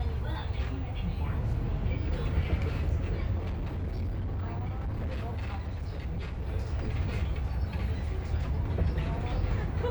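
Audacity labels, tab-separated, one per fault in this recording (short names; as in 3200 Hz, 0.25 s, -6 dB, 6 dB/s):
3.370000	6.430000	clipped -29.5 dBFS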